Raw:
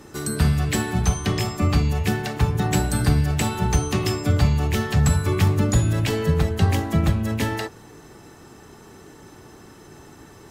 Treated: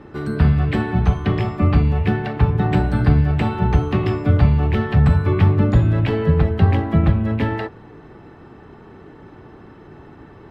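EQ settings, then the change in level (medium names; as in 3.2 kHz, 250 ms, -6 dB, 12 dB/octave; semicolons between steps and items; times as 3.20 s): distance through air 430 m; +4.5 dB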